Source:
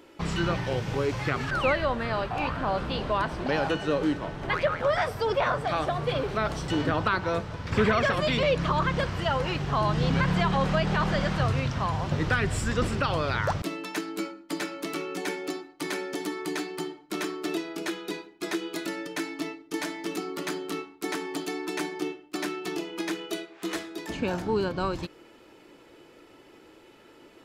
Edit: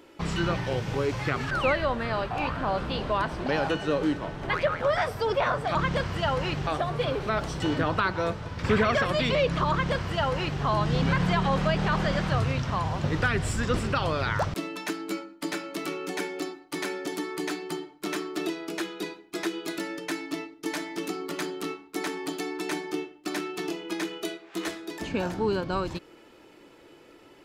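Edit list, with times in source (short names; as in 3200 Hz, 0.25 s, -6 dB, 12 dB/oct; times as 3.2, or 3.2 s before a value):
8.78–9.7 copy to 5.75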